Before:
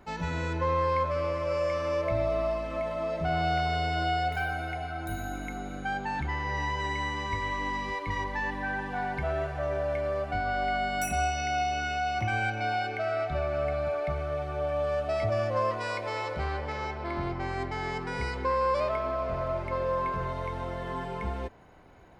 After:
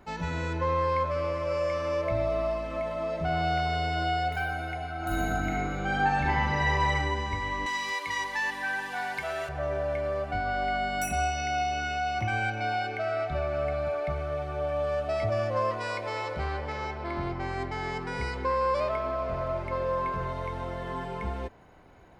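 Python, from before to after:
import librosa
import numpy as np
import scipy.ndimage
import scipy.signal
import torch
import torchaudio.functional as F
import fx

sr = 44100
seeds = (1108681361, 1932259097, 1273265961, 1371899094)

y = fx.reverb_throw(x, sr, start_s=4.97, length_s=1.94, rt60_s=1.6, drr_db=-5.5)
y = fx.tilt_eq(y, sr, slope=4.5, at=(7.66, 9.49))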